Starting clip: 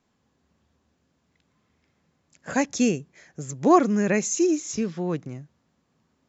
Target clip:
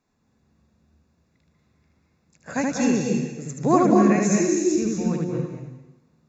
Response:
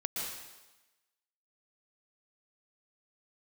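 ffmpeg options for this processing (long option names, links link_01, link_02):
-filter_complex "[0:a]asuperstop=centerf=3100:order=4:qfactor=6.3,asplit=2[link_01][link_02];[1:a]atrim=start_sample=2205,lowshelf=frequency=230:gain=12,adelay=77[link_03];[link_02][link_03]afir=irnorm=-1:irlink=0,volume=-3dB[link_04];[link_01][link_04]amix=inputs=2:normalize=0,volume=-3dB"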